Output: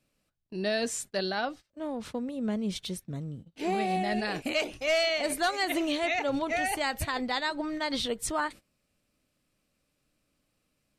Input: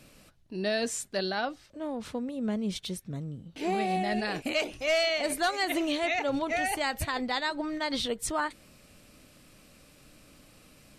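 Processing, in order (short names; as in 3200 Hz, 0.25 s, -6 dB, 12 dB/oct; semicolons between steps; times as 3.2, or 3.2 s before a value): gate -43 dBFS, range -20 dB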